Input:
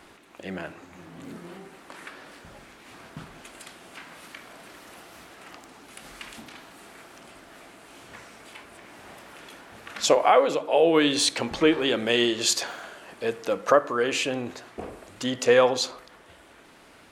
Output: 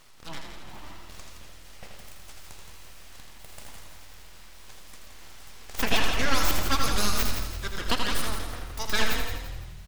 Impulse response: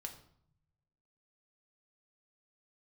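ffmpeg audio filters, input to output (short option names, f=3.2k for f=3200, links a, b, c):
-filter_complex "[0:a]asetrate=76440,aresample=44100,equalizer=f=980:w=5.4:g=-12,aeval=exprs='abs(val(0))':c=same,asplit=6[a][b][c][d][e][f];[b]adelay=169,afreqshift=40,volume=-8dB[g];[c]adelay=338,afreqshift=80,volume=-16dB[h];[d]adelay=507,afreqshift=120,volume=-23.9dB[i];[e]adelay=676,afreqshift=160,volume=-31.9dB[j];[f]adelay=845,afreqshift=200,volume=-39.8dB[k];[a][g][h][i][j][k]amix=inputs=6:normalize=0,asplit=2[l][m];[1:a]atrim=start_sample=2205,asetrate=29106,aresample=44100,adelay=81[n];[m][n]afir=irnorm=-1:irlink=0,volume=-3.5dB[o];[l][o]amix=inputs=2:normalize=0,volume=-1.5dB"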